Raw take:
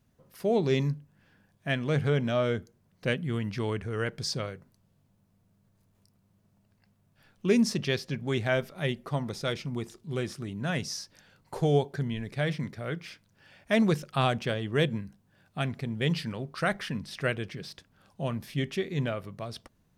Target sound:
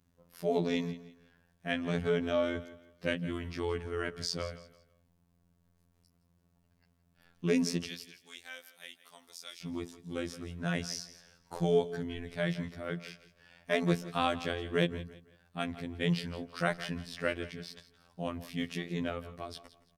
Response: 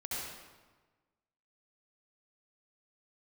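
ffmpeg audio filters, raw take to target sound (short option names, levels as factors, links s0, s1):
-filter_complex "[0:a]asettb=1/sr,asplit=3[s0][s1][s2];[s0]atrim=end=7.874[s3];[s1]atrim=start=7.87:end=9.62,asetpts=PTS-STARTPTS,afade=t=in:d=0.004:c=qsin,afade=t=out:st=1.746:d=0.004:c=qsin,aderivative[s4];[s2]atrim=start=9.616[s5];[s3][s4]acrossfade=d=0.004:c1=hsin:c2=qsin[s6];[s6][s5]acrossfade=d=0.004:c1=qsin:c2=hsin,afftfilt=real='hypot(re,im)*cos(PI*b)':imag='0':win_size=2048:overlap=0.75,aecho=1:1:167|334|501:0.158|0.0491|0.0152"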